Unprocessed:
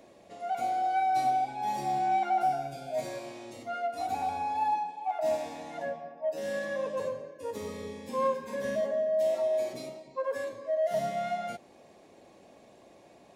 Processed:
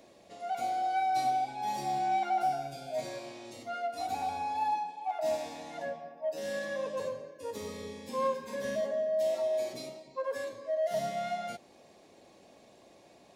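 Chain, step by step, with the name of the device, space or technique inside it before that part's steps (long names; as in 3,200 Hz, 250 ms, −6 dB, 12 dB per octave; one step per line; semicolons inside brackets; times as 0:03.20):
0:02.97–0:03.45: high-shelf EQ 8,300 Hz −7 dB
presence and air boost (parametric band 4,500 Hz +5 dB 1.3 octaves; high-shelf EQ 9,500 Hz +4 dB)
level −2.5 dB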